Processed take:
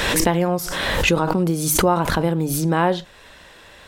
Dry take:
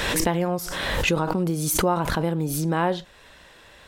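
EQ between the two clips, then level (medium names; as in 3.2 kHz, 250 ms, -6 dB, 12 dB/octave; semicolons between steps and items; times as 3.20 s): hum notches 50/100/150 Hz; +4.5 dB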